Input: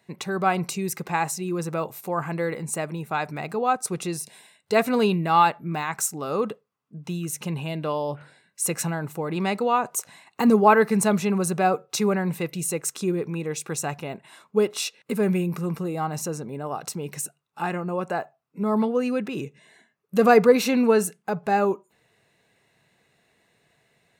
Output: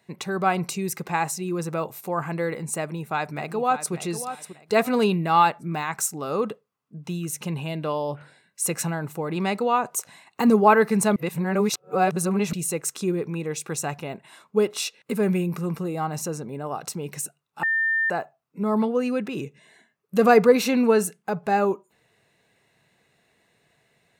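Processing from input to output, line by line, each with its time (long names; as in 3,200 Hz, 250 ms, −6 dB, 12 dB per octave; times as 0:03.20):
0:02.78–0:03.93: delay throw 590 ms, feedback 30%, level −11 dB
0:11.16–0:12.53: reverse
0:17.63–0:18.10: beep over 1,800 Hz −19.5 dBFS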